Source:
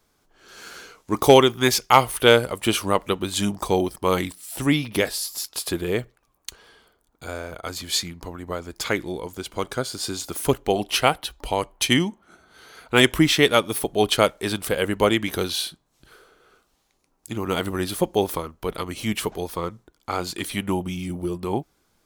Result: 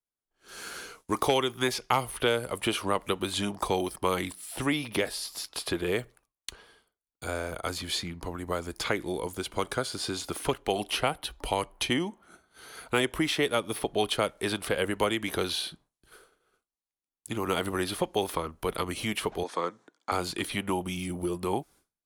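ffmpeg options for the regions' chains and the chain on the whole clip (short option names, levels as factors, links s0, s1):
-filter_complex "[0:a]asettb=1/sr,asplit=3[s0][s1][s2];[s0]atrim=end=19.434[s3];[s1]atrim=start=19.43:end=20.12,asetpts=PTS-STARTPTS,afade=t=in:d=0.004:c=qsin,afade=t=out:st=0.686:d=0.004:c=qsin,acompressor=mode=upward:threshold=0.01:ratio=2.5:attack=3.2:release=140:knee=2.83:detection=peak,highpass=f=210:w=0.5412,highpass=f=210:w=1.3066,equalizer=f=210:t=q:w=4:g=-8,equalizer=f=370:t=q:w=4:g=-5,equalizer=f=1700:t=q:w=4:g=4,equalizer=f=2800:t=q:w=4:g=-4,equalizer=f=5000:t=q:w=4:g=-4,lowpass=f=7000:w=0.5412,lowpass=f=7000:w=1.3066[s4];[s2]atrim=start=20.116[s5];[s3][s4]acrossfade=d=0.004:c1=hsin:c2=qsin[s6];[s6][s5]acrossfade=d=0.004:c1=qsin:c2=hsin,agate=range=0.0224:threshold=0.00501:ratio=3:detection=peak,equalizer=f=10000:w=2.3:g=10,acrossover=split=360|1000|4700[s7][s8][s9][s10];[s7]acompressor=threshold=0.0178:ratio=4[s11];[s8]acompressor=threshold=0.0355:ratio=4[s12];[s9]acompressor=threshold=0.0316:ratio=4[s13];[s10]acompressor=threshold=0.00631:ratio=4[s14];[s11][s12][s13][s14]amix=inputs=4:normalize=0"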